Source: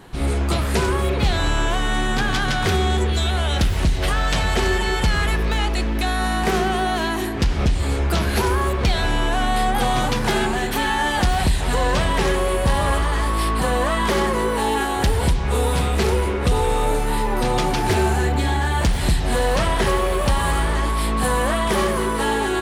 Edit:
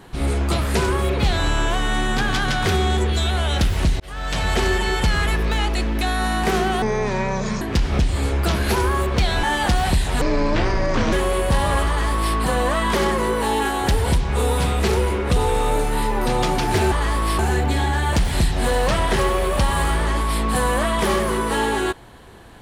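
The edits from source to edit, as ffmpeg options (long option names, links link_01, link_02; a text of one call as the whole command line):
ffmpeg -i in.wav -filter_complex "[0:a]asplit=9[link_01][link_02][link_03][link_04][link_05][link_06][link_07][link_08][link_09];[link_01]atrim=end=4,asetpts=PTS-STARTPTS,afade=type=out:start_time=3.996:duration=0.004:curve=hsin[link_10];[link_02]atrim=start=4:end=6.824,asetpts=PTS-STARTPTS,afade=type=in:duration=0.5[link_11];[link_03]atrim=start=6.82:end=7.28,asetpts=PTS-STARTPTS,asetrate=25578,aresample=44100[link_12];[link_04]atrim=start=7.276:end=9.102[link_13];[link_05]atrim=start=10.968:end=11.754[link_14];[link_06]atrim=start=11.75:end=12.28,asetpts=PTS-STARTPTS,asetrate=25578,aresample=44100,atrim=end_sample=40298,asetpts=PTS-STARTPTS[link_15];[link_07]atrim=start=12.276:end=18.072[link_16];[link_08]atrim=start=13.028:end=13.502[link_17];[link_09]atrim=start=18.068[link_18];[link_10][link_11]concat=n=2:v=0:a=1[link_19];[link_19][link_12]acrossfade=duration=0.004:curve1=hsin:curve2=hsin[link_20];[link_20][link_13]acrossfade=duration=0.004:curve1=hsin:curve2=hsin[link_21];[link_21][link_14]acrossfade=duration=0.004:curve1=hsin:curve2=hsin[link_22];[link_22][link_15]acrossfade=duration=0.004:curve1=hsin:curve2=hsin[link_23];[link_23][link_16]acrossfade=duration=0.004:curve1=hsin:curve2=hsin[link_24];[link_24][link_17]acrossfade=duration=0.004:curve1=hsin:curve2=hsin[link_25];[link_25][link_18]acrossfade=duration=0.004:curve1=hsin:curve2=hsin" out.wav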